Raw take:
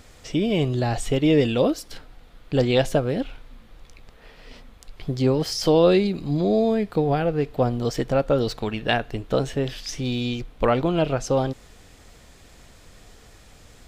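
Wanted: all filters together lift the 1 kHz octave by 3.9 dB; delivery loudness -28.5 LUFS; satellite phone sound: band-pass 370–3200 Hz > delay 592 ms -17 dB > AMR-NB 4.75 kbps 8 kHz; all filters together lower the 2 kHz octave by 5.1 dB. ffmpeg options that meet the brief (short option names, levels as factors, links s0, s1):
-af "highpass=370,lowpass=3200,equalizer=f=1000:t=o:g=8,equalizer=f=2000:t=o:g=-9,aecho=1:1:592:0.141,volume=0.708" -ar 8000 -c:a libopencore_amrnb -b:a 4750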